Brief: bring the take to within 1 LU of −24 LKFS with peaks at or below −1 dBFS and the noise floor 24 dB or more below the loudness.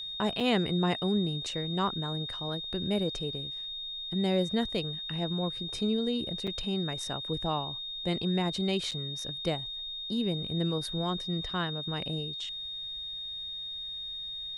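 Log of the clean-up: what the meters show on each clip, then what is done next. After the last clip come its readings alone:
number of dropouts 3; longest dropout 5.3 ms; interfering tone 3,700 Hz; level of the tone −36 dBFS; integrated loudness −31.5 LKFS; sample peak −14.0 dBFS; target loudness −24.0 LKFS
→ repair the gap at 0:00.40/0:06.47/0:08.91, 5.3 ms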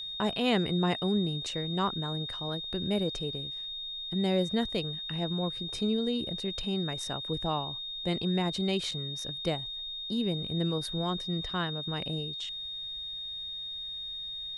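number of dropouts 0; interfering tone 3,700 Hz; level of the tone −36 dBFS
→ notch filter 3,700 Hz, Q 30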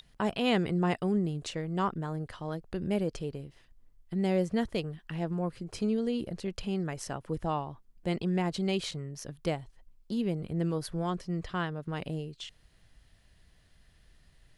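interfering tone none found; integrated loudness −33.0 LKFS; sample peak −14.5 dBFS; target loudness −24.0 LKFS
→ level +9 dB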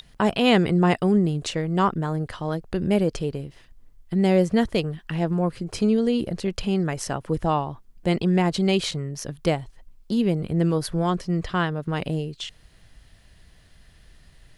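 integrated loudness −24.0 LKFS; sample peak −5.5 dBFS; background noise floor −54 dBFS

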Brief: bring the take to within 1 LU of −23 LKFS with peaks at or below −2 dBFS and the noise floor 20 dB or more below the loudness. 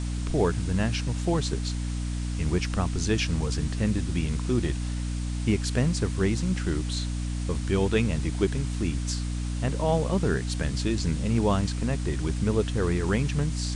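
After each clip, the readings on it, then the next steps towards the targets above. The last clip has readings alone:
mains hum 60 Hz; hum harmonics up to 300 Hz; level of the hum −27 dBFS; background noise floor −30 dBFS; target noise floor −48 dBFS; integrated loudness −27.5 LKFS; sample peak −10.0 dBFS; target loudness −23.0 LKFS
→ mains-hum notches 60/120/180/240/300 Hz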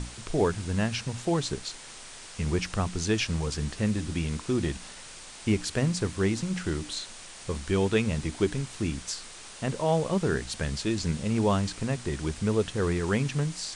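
mains hum none found; background noise floor −45 dBFS; target noise floor −49 dBFS
→ broadband denoise 6 dB, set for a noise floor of −45 dBFS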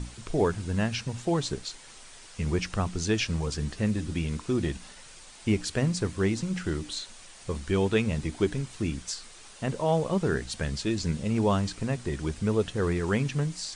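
background noise floor −49 dBFS; integrated loudness −29.0 LKFS; sample peak −11.5 dBFS; target loudness −23.0 LKFS
→ level +6 dB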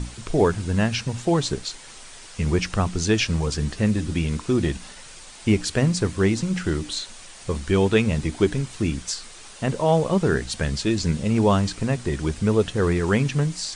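integrated loudness −23.0 LKFS; sample peak −5.5 dBFS; background noise floor −43 dBFS

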